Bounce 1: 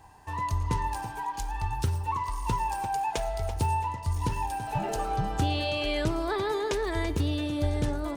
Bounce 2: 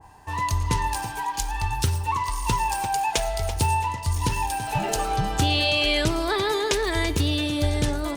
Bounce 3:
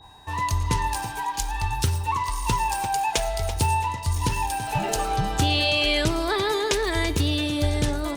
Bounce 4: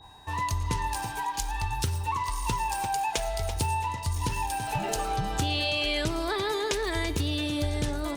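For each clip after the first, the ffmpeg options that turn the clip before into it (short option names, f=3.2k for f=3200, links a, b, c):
-af "adynamicequalizer=threshold=0.00447:dfrequency=1800:dqfactor=0.7:tfrequency=1800:tqfactor=0.7:attack=5:release=100:ratio=0.375:range=4:mode=boostabove:tftype=highshelf,volume=4dB"
-af "aeval=exprs='val(0)+0.00251*sin(2*PI*3800*n/s)':c=same"
-af "acompressor=threshold=-25dB:ratio=2,volume=-2dB"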